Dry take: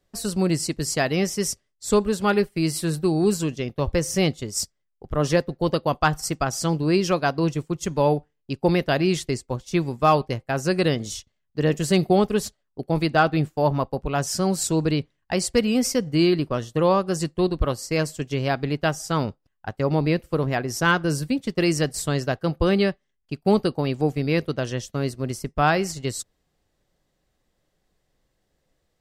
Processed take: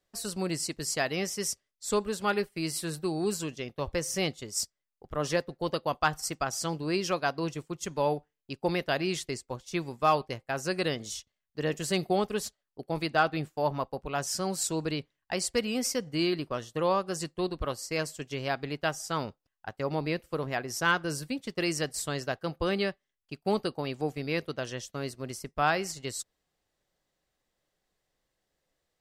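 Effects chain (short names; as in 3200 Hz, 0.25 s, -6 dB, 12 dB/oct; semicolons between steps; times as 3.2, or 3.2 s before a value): low shelf 380 Hz -9 dB; gain -4.5 dB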